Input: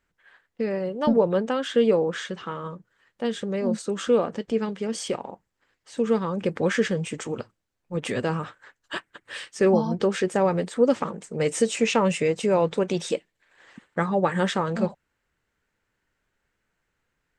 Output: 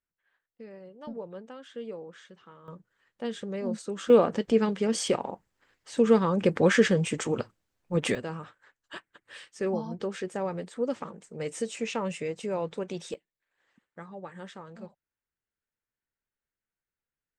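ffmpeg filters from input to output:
-af "asetnsamples=n=441:p=0,asendcmd='2.68 volume volume -6.5dB;4.1 volume volume 2dB;8.15 volume volume -10dB;13.14 volume volume -19.5dB',volume=-19dB"

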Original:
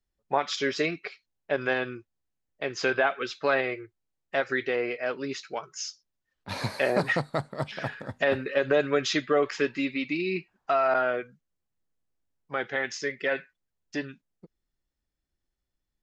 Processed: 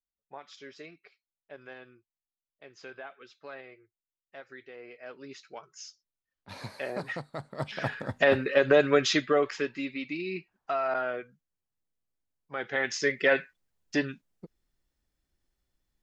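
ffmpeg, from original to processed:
-af "volume=12.5dB,afade=t=in:st=4.75:d=0.75:silence=0.334965,afade=t=in:st=7.36:d=0.6:silence=0.237137,afade=t=out:st=8.97:d=0.72:silence=0.398107,afade=t=in:st=12.55:d=0.55:silence=0.316228"

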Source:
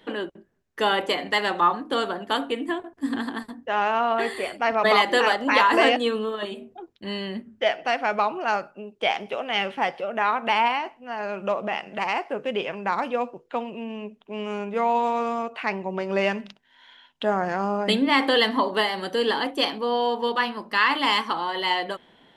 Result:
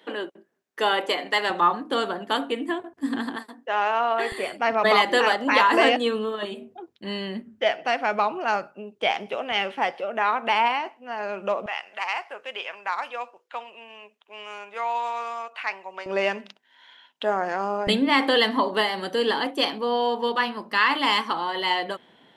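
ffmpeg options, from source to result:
-af "asetnsamples=n=441:p=0,asendcmd='1.5 highpass f 100;3.36 highpass f 360;4.32 highpass f 93;9.52 highpass f 230;11.66 highpass f 940;16.06 highpass f 310;17.87 highpass f 100',highpass=300"

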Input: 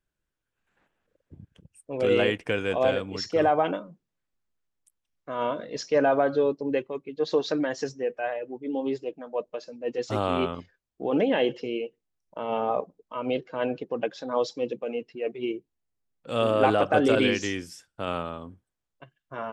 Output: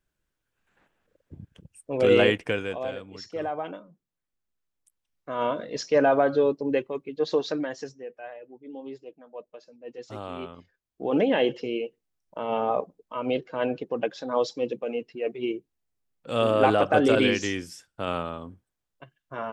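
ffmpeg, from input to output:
-af "volume=25.5dB,afade=t=out:st=2.3:d=0.51:silence=0.237137,afade=t=in:st=3.74:d=1.75:silence=0.298538,afade=t=out:st=7.13:d=0.91:silence=0.251189,afade=t=in:st=10.55:d=0.61:silence=0.266073"

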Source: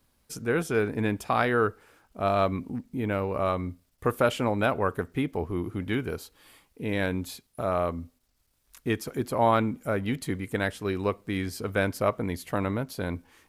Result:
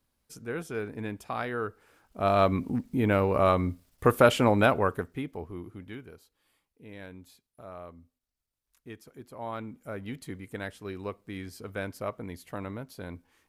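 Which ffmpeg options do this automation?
-af "volume=12dB,afade=t=in:st=1.67:d=1.08:silence=0.237137,afade=t=out:st=4.56:d=0.6:silence=0.298538,afade=t=out:st=5.16:d=0.98:silence=0.298538,afade=t=in:st=9.35:d=0.72:silence=0.398107"

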